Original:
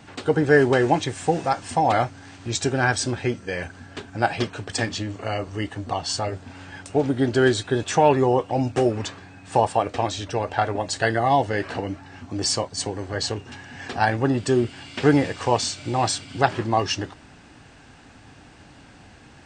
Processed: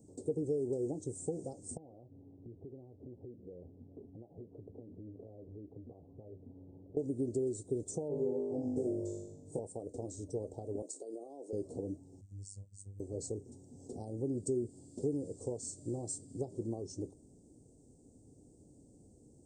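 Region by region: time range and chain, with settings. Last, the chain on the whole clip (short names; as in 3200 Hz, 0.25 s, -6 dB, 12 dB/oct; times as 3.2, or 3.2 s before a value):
1.77–6.97 steep low-pass 1500 Hz + compressor 20:1, threshold -34 dBFS
8.08–9.59 LPF 2800 Hz 6 dB/oct + flutter echo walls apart 3.4 m, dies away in 0.87 s
10.82–11.53 HPF 300 Hz 24 dB/oct + compressor 12:1, threshold -26 dBFS
12.21–13 EQ curve 110 Hz 0 dB, 370 Hz -28 dB, 3700 Hz -13 dB + robotiser 99.1 Hz + mismatched tape noise reduction encoder only
whole clip: compressor 10:1, threshold -21 dBFS; Chebyshev band-stop 460–7800 Hz, order 3; low shelf 200 Hz -7.5 dB; gain -6 dB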